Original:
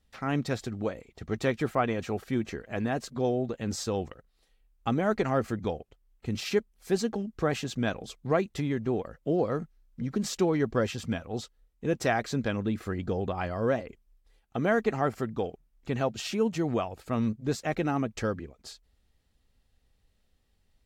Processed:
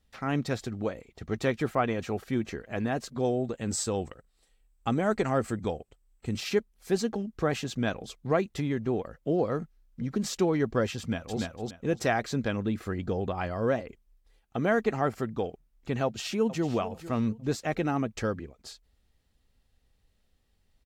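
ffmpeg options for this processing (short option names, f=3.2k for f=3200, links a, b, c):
-filter_complex "[0:a]asettb=1/sr,asplit=3[a][b][c];[a]atrim=end=3.184[d];[b]atrim=start=3.18:end=6.38,asetpts=PTS-STARTPTS,afade=t=in:d=0.004:c=qsin,afade=t=out:st=3.196:d=0.004:c=qsin,equalizer=f=8k:w=5.6:g=14[e];[c]atrim=start=6.376[f];[d][e]acrossfade=d=0.004:c1=hsin:c2=qsin[g];[g][f]acrossfade=d=0.004:c1=qsin:c2=hsin,asplit=2[h][i];[i]afade=t=in:st=10.99:d=0.01,afade=t=out:st=11.41:d=0.01,aecho=0:1:290|580|870:0.841395|0.168279|0.0336558[j];[h][j]amix=inputs=2:normalize=0,asplit=2[k][l];[l]afade=t=in:st=16.04:d=0.01,afade=t=out:st=16.66:d=0.01,aecho=0:1:450|900|1350:0.188365|0.0470912|0.0117728[m];[k][m]amix=inputs=2:normalize=0"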